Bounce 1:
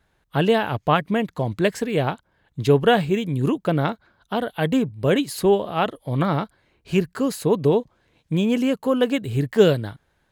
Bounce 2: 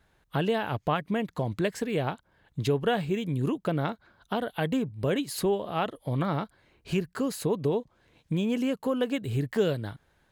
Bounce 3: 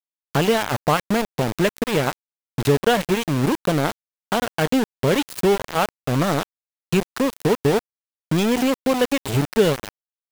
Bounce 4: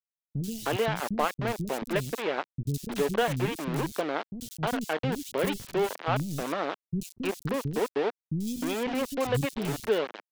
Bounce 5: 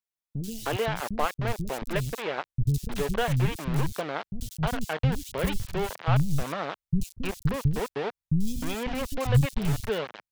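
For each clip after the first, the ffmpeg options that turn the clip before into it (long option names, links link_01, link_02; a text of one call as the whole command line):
ffmpeg -i in.wav -af "acompressor=threshold=-30dB:ratio=2" out.wav
ffmpeg -i in.wav -af "aeval=exprs='val(0)*gte(abs(val(0)),0.0398)':channel_layout=same,volume=8.5dB" out.wav
ffmpeg -i in.wav -filter_complex "[0:a]acrossover=split=260|4300[link_01][link_02][link_03];[link_03]adelay=90[link_04];[link_02]adelay=310[link_05];[link_01][link_05][link_04]amix=inputs=3:normalize=0,volume=-7.5dB" out.wav
ffmpeg -i in.wav -af "asubboost=boost=12:cutoff=89" out.wav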